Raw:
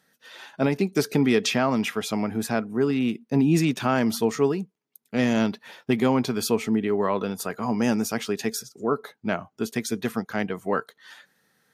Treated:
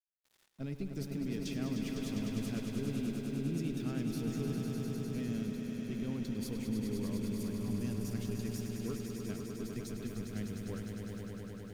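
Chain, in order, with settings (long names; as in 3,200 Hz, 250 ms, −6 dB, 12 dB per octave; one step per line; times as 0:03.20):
harmonic generator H 6 −24 dB, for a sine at −9 dBFS
guitar amp tone stack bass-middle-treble 10-0-1
in parallel at −2 dB: output level in coarse steps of 15 dB
on the sum: brickwall limiter −31.5 dBFS, peak gain reduction 4.5 dB
reversed playback
upward compression, threshold −57 dBFS
reversed playback
centre clipping without the shift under −59 dBFS
echo that builds up and dies away 101 ms, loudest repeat 5, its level −7 dB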